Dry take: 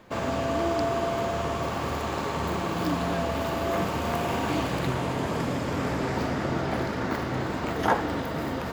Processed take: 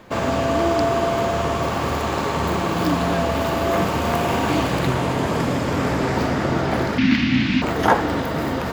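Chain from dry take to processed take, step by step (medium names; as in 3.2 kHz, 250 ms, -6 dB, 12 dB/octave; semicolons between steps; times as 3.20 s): 6.98–7.62 s: FFT filter 130 Hz 0 dB, 260 Hz +12 dB, 410 Hz -20 dB, 1.3 kHz -7 dB, 2.5 kHz +14 dB, 5.7 kHz +3 dB, 8.6 kHz -15 dB; trim +7 dB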